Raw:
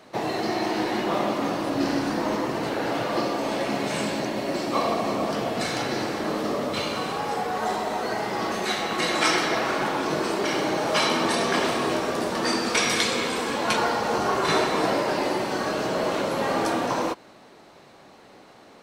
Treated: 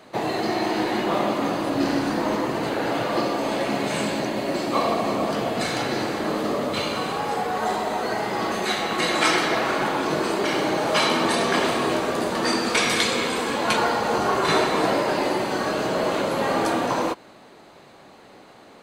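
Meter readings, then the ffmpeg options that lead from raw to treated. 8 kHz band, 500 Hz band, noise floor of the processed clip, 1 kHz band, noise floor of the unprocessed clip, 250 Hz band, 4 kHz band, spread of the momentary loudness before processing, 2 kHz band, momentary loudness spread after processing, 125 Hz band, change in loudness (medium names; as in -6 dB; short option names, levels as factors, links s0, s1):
+0.5 dB, +2.0 dB, -48 dBFS, +2.0 dB, -50 dBFS, +2.0 dB, +1.5 dB, 5 LU, +2.0 dB, 5 LU, +2.0 dB, +2.0 dB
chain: -af "bandreject=f=5500:w=8,volume=1.26"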